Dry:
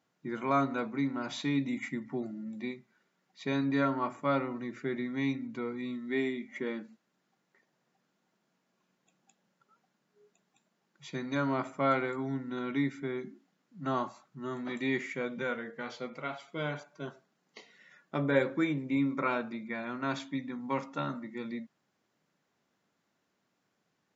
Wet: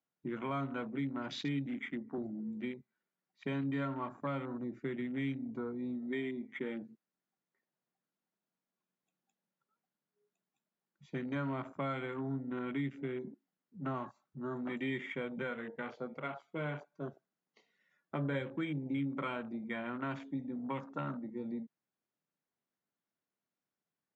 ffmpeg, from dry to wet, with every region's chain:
-filter_complex "[0:a]asettb=1/sr,asplit=3[a][b][c];[a]atrim=end=1.664[d];[b]atrim=start=1.66:end=2.18,asetpts=PTS-STARTPTS,afade=t=in:d=0.004:c=qsin,afade=t=out:st=0.516:d=0.004:c=qsin,highpass=200,highshelf=f=5.1k:g=-9,asoftclip=type=hard:threshold=-31dB[e];[c]atrim=start=2.176[f];[d][e]acrossfade=d=0.004:c1=hsin:c2=qsin[g];[g][f]acrossfade=d=0.004:c1=qsin:c2=hsin,afwtdn=0.00708,highshelf=f=5.4k:g=-5,acrossover=split=160|3000[h][i][j];[i]acompressor=threshold=-36dB:ratio=6[k];[h][k][j]amix=inputs=3:normalize=0"

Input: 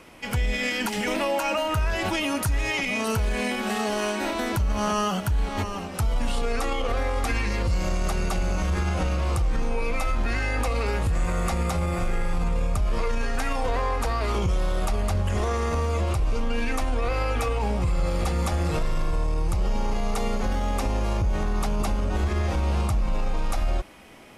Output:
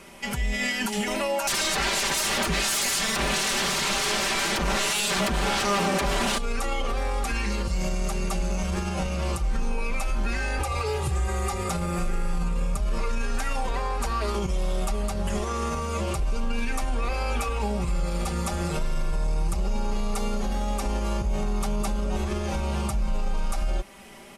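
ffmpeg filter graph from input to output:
-filter_complex "[0:a]asettb=1/sr,asplit=3[a][b][c];[a]atrim=end=1.474[d];[b]atrim=start=1.47:end=6.38,asetpts=PTS-STARTPTS,afade=t=in:d=0.004:c=qsin,afade=t=out:st=4.906:d=0.004:c=qsin,highpass=f=190:p=1,acrossover=split=3700[e][f];[f]acompressor=threshold=-48dB:ratio=4:attack=1:release=60[g];[e][g]amix=inputs=2:normalize=0,aeval=exprs='0.15*sin(PI/2*6.31*val(0)/0.15)':c=same[h];[c]atrim=start=6.376[i];[d][h]acrossfade=d=0.004:c1=hsin:c2=qsin[j];[j][i]acrossfade=d=0.004:c1=qsin:c2=hsin,asettb=1/sr,asplit=3[k][l][m];[k]atrim=end=10.594[n];[l]atrim=start=10.59:end=11.69,asetpts=PTS-STARTPTS,afade=t=in:d=0.004:c=qsin,afade=t=out:st=1.096:d=0.004:c=qsin,aecho=1:1:2.5:0.85,atrim=end_sample=48510,afreqshift=22[o];[m]atrim=start=11.686[p];[n][o]acrossfade=d=0.004:c1=hsin:c2=qsin[q];[q][p]acrossfade=d=0.004:c1=qsin:c2=hsin,equalizer=f=8.8k:w=0.73:g=5.5,aecho=1:1:5.1:0.71,alimiter=limit=-18dB:level=0:latency=1:release=251"

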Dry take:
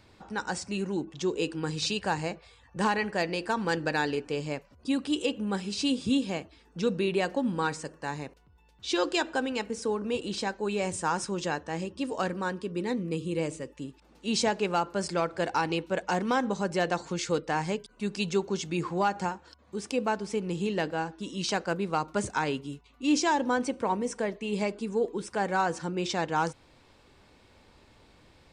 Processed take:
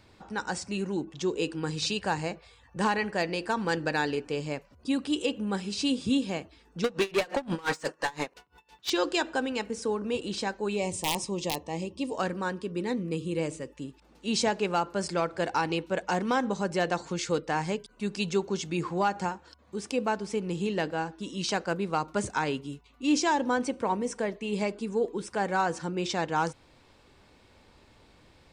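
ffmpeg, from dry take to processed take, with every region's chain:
-filter_complex "[0:a]asettb=1/sr,asplit=3[a][b][c];[a]atrim=end=6.844[d];[b]atrim=start=6.84:end=8.9,asetpts=PTS-STARTPTS,afade=t=in:d=0.004:c=qsin,afade=t=out:st=2.056:d=0.004:c=qsin,asplit=2[e][f];[f]highpass=f=720:p=1,volume=25dB,asoftclip=type=tanh:threshold=-16dB[g];[e][g]amix=inputs=2:normalize=0,lowpass=f=6.2k:p=1,volume=-6dB,aeval=exprs='val(0)*pow(10,-26*(0.5-0.5*cos(2*PI*5.8*n/s))/20)':c=same[h];[c]atrim=start=8.896[i];[d][h]acrossfade=d=0.004:c1=hsin:c2=qsin[j];[j][i]acrossfade=d=0.004:c1=qsin:c2=hsin,asettb=1/sr,asplit=3[k][l][m];[k]atrim=end=10.764[n];[l]atrim=start=10.76:end=12.14,asetpts=PTS-STARTPTS,afade=t=in:d=0.004:c=qsin,afade=t=out:st=1.376:d=0.004:c=qsin,aeval=exprs='(mod(7.94*val(0)+1,2)-1)/7.94':c=same,asuperstop=centerf=1500:order=4:qfactor=1.7[o];[m]atrim=start=12.136[p];[n][o]acrossfade=d=0.004:c1=hsin:c2=qsin[q];[q][p]acrossfade=d=0.004:c1=qsin:c2=hsin"

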